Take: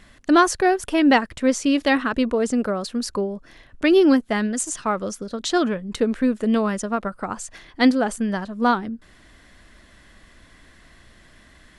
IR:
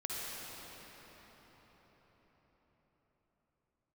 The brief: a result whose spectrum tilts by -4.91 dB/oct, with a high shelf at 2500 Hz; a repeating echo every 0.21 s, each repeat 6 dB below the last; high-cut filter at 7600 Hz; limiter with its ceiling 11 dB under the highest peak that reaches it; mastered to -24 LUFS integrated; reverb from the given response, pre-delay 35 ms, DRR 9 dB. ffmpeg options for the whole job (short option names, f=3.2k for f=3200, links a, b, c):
-filter_complex "[0:a]lowpass=7.6k,highshelf=f=2.5k:g=-7,alimiter=limit=-16dB:level=0:latency=1,aecho=1:1:210|420|630|840|1050|1260:0.501|0.251|0.125|0.0626|0.0313|0.0157,asplit=2[a][b];[1:a]atrim=start_sample=2205,adelay=35[c];[b][c]afir=irnorm=-1:irlink=0,volume=-12.5dB[d];[a][d]amix=inputs=2:normalize=0,volume=0.5dB"